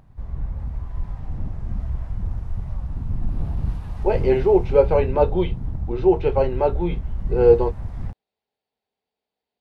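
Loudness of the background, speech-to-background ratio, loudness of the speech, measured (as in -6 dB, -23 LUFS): -30.0 LUFS, 10.0 dB, -20.0 LUFS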